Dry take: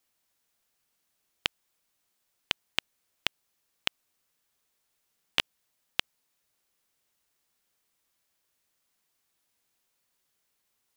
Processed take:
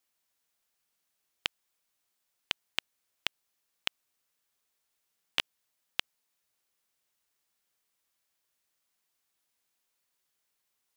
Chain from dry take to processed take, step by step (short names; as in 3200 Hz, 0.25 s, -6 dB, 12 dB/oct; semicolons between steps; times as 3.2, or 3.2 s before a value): low shelf 440 Hz -4.5 dB; gain -3 dB